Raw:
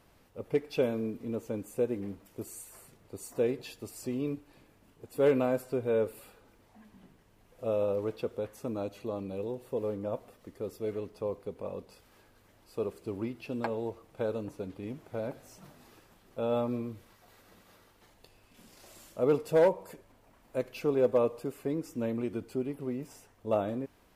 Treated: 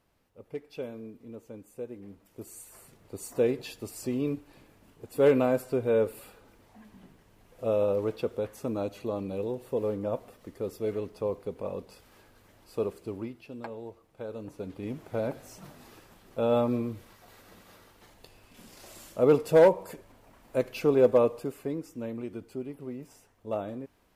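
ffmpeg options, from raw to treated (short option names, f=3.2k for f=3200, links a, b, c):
-af "volume=15dB,afade=t=in:st=2.01:d=1.25:silence=0.237137,afade=t=out:st=12.8:d=0.66:silence=0.316228,afade=t=in:st=14.28:d=0.75:silence=0.266073,afade=t=out:st=21.06:d=0.87:silence=0.375837"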